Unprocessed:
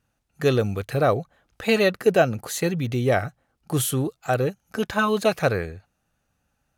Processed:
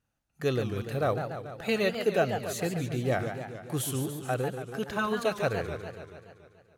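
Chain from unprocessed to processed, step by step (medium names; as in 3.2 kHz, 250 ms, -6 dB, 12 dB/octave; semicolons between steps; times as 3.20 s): modulated delay 143 ms, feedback 65%, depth 208 cents, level -8 dB; trim -8 dB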